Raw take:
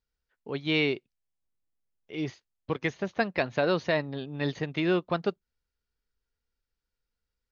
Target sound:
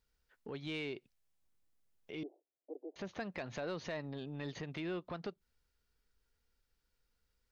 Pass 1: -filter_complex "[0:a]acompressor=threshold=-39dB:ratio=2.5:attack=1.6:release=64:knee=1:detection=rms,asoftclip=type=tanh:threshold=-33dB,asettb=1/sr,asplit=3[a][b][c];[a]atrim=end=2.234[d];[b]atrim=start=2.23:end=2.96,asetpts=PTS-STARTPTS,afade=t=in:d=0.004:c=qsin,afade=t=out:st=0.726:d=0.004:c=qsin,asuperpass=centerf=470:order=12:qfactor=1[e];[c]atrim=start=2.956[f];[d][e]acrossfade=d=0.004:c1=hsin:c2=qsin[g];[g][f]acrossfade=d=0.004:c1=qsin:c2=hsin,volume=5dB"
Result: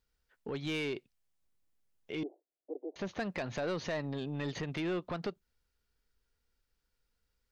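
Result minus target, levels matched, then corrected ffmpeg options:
compressor: peak gain reduction -7 dB
-filter_complex "[0:a]acompressor=threshold=-50.5dB:ratio=2.5:attack=1.6:release=64:knee=1:detection=rms,asoftclip=type=tanh:threshold=-33dB,asettb=1/sr,asplit=3[a][b][c];[a]atrim=end=2.234[d];[b]atrim=start=2.23:end=2.96,asetpts=PTS-STARTPTS,afade=t=in:d=0.004:c=qsin,afade=t=out:st=0.726:d=0.004:c=qsin,asuperpass=centerf=470:order=12:qfactor=1[e];[c]atrim=start=2.956[f];[d][e]acrossfade=d=0.004:c1=hsin:c2=qsin[g];[g][f]acrossfade=d=0.004:c1=qsin:c2=hsin,volume=5dB"

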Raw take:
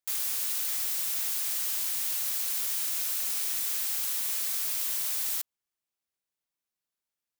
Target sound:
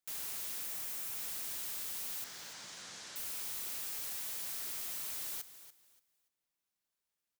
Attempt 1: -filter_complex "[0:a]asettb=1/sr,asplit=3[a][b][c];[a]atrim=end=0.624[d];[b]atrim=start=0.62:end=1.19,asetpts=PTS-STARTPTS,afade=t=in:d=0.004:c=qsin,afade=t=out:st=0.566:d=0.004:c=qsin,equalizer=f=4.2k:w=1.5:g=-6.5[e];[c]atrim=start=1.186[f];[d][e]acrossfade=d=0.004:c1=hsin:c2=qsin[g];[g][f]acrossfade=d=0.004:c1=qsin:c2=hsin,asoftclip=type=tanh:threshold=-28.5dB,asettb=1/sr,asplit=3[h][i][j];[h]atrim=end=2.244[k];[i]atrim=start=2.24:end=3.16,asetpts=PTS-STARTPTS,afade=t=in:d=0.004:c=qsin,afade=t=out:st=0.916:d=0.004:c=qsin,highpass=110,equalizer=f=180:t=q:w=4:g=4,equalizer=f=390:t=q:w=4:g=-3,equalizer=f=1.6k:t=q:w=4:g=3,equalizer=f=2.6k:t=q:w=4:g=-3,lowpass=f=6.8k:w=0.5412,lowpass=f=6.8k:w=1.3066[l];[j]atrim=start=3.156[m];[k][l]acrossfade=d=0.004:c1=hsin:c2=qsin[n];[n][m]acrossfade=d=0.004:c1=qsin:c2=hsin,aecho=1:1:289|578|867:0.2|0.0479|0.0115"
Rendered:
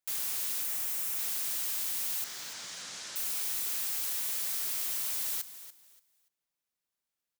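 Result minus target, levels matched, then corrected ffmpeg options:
soft clip: distortion -7 dB
-filter_complex "[0:a]asettb=1/sr,asplit=3[a][b][c];[a]atrim=end=0.624[d];[b]atrim=start=0.62:end=1.19,asetpts=PTS-STARTPTS,afade=t=in:d=0.004:c=qsin,afade=t=out:st=0.566:d=0.004:c=qsin,equalizer=f=4.2k:w=1.5:g=-6.5[e];[c]atrim=start=1.186[f];[d][e]acrossfade=d=0.004:c1=hsin:c2=qsin[g];[g][f]acrossfade=d=0.004:c1=qsin:c2=hsin,asoftclip=type=tanh:threshold=-39.5dB,asettb=1/sr,asplit=3[h][i][j];[h]atrim=end=2.244[k];[i]atrim=start=2.24:end=3.16,asetpts=PTS-STARTPTS,afade=t=in:d=0.004:c=qsin,afade=t=out:st=0.916:d=0.004:c=qsin,highpass=110,equalizer=f=180:t=q:w=4:g=4,equalizer=f=390:t=q:w=4:g=-3,equalizer=f=1.6k:t=q:w=4:g=3,equalizer=f=2.6k:t=q:w=4:g=-3,lowpass=f=6.8k:w=0.5412,lowpass=f=6.8k:w=1.3066[l];[j]atrim=start=3.156[m];[k][l]acrossfade=d=0.004:c1=hsin:c2=qsin[n];[n][m]acrossfade=d=0.004:c1=qsin:c2=hsin,aecho=1:1:289|578|867:0.2|0.0479|0.0115"

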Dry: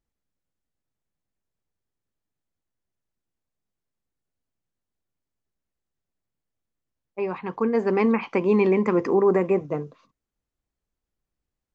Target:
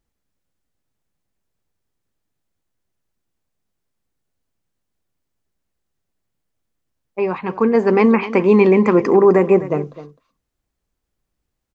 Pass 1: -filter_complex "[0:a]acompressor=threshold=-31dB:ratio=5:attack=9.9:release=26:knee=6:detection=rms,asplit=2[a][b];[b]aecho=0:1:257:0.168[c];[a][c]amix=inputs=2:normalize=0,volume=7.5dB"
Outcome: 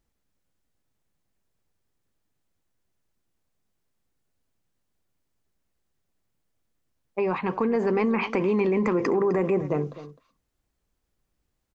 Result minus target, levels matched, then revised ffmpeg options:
compressor: peak gain reduction +13.5 dB
-filter_complex "[0:a]asplit=2[a][b];[b]aecho=0:1:257:0.168[c];[a][c]amix=inputs=2:normalize=0,volume=7.5dB"

